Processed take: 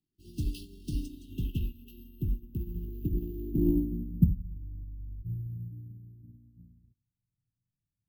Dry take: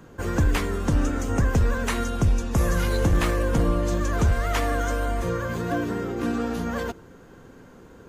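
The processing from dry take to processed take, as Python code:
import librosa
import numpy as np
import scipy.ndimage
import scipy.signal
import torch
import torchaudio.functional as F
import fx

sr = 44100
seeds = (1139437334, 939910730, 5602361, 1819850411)

p1 = x + 10.0 ** (-22.0 / 20.0) * np.pad(x, (int(274 * sr / 1000.0), 0))[:len(x)]
p2 = fx.filter_sweep_lowpass(p1, sr, from_hz=4800.0, to_hz=120.0, start_s=1.05, end_s=4.68, q=3.6)
p3 = np.clip(p2, -10.0 ** (-23.5 / 20.0), 10.0 ** (-23.5 / 20.0))
p4 = p2 + (p3 * librosa.db_to_amplitude(-8.5))
p5 = fx.room_shoebox(p4, sr, seeds[0], volume_m3=400.0, walls='furnished', distance_m=0.43)
p6 = np.repeat(p5[::3], 3)[:len(p5)]
p7 = fx.brickwall_bandstop(p6, sr, low_hz=410.0, high_hz=2600.0)
p8 = fx.upward_expand(p7, sr, threshold_db=-37.0, expansion=2.5)
y = p8 * librosa.db_to_amplitude(-4.5)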